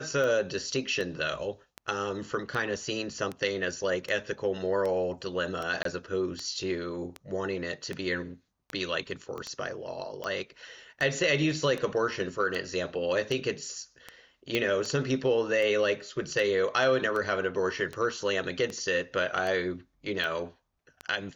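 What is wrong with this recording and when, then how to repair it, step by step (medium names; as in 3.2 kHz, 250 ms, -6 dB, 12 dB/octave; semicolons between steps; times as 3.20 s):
tick 78 rpm -21 dBFS
5.83–5.85 s: dropout 23 ms
9.38 s: pop -26 dBFS
14.55 s: pop -14 dBFS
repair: de-click; interpolate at 5.83 s, 23 ms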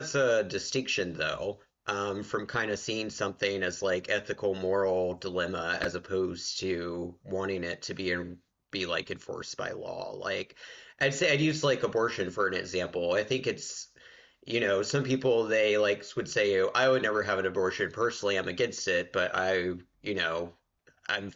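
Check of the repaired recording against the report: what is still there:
9.38 s: pop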